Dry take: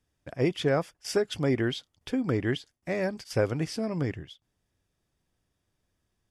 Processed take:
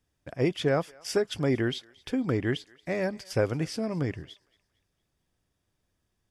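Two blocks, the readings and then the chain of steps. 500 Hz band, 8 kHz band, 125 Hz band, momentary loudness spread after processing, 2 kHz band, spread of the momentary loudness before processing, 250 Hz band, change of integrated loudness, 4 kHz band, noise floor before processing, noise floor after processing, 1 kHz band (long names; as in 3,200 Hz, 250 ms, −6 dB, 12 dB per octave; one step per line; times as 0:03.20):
0.0 dB, 0.0 dB, 0.0 dB, 7 LU, 0.0 dB, 7 LU, 0.0 dB, 0.0 dB, 0.0 dB, −80 dBFS, −79 dBFS, 0.0 dB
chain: feedback echo with a high-pass in the loop 230 ms, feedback 42%, high-pass 900 Hz, level −22.5 dB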